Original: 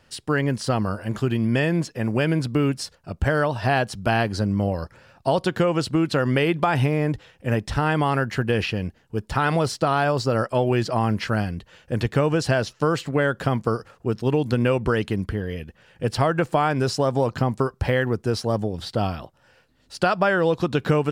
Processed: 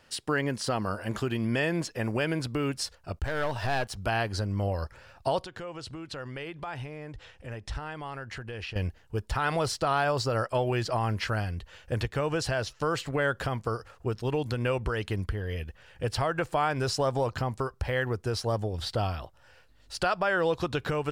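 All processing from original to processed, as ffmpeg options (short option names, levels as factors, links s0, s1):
-filter_complex "[0:a]asettb=1/sr,asplit=3[s0][s1][s2];[s0]atrim=end=3.194[s3];[s1]atrim=start=3.19:end=3.97,asetpts=PTS-STARTPTS,afade=t=in:d=0.004:c=qsin,afade=t=out:st=0.776:d=0.004:c=qsin,aeval=exprs='sgn(val(0))*max(abs(val(0))-0.00422,0)':c=same,aeval=exprs='(tanh(8.91*val(0)+0.25)-tanh(0.25))/8.91':c=same[s4];[s2]atrim=start=3.966[s5];[s3][s4]acrossfade=d=0.004:c1=hsin:c2=qsin[s6];[s6][s5]acrossfade=d=0.004:c1=qsin:c2=hsin,asettb=1/sr,asplit=3[s7][s8][s9];[s7]atrim=end=5.444[s10];[s8]atrim=start=5.44:end=8.76,asetpts=PTS-STARTPTS,afade=t=in:d=0.004:c=qsin,afade=t=out:st=3.316:d=0.004:c=qsin,acompressor=threshold=0.0112:ratio=2.5:attack=3.2:release=140:knee=1:detection=peak,lowpass=9300[s11];[s9]atrim=start=8.756[s12];[s10][s11]acrossfade=d=0.004:c1=hsin:c2=qsin[s13];[s13][s12]acrossfade=d=0.004:c1=qsin:c2=hsin,asubboost=boost=7.5:cutoff=70,alimiter=limit=0.178:level=0:latency=1:release=348,lowshelf=f=260:g=-7"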